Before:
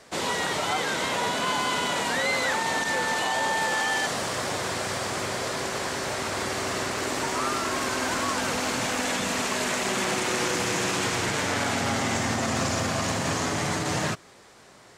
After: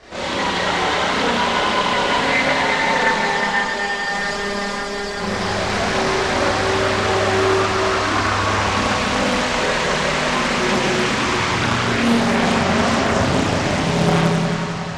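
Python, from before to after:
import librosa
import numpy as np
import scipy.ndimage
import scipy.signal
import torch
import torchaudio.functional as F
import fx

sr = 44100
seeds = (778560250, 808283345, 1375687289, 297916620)

p1 = fx.robotise(x, sr, hz=201.0, at=(3.06, 5.17))
p2 = fx.low_shelf(p1, sr, hz=70.0, db=9.0)
p3 = fx.over_compress(p2, sr, threshold_db=-33.0, ratio=-0.5)
p4 = p2 + (p3 * 10.0 ** (2.0 / 20.0))
p5 = scipy.signal.sosfilt(scipy.signal.butter(2, 4700.0, 'lowpass', fs=sr, output='sos'), p4)
p6 = fx.rev_schroeder(p5, sr, rt60_s=2.8, comb_ms=30, drr_db=-9.0)
p7 = fx.tube_stage(p6, sr, drive_db=5.0, bias=0.4)
p8 = fx.chorus_voices(p7, sr, voices=4, hz=0.29, base_ms=27, depth_ms=2.7, mix_pct=60)
p9 = p8 + fx.echo_heads(p8, sr, ms=181, heads='first and second', feedback_pct=55, wet_db=-10.5, dry=0)
y = fx.doppler_dist(p9, sr, depth_ms=0.66)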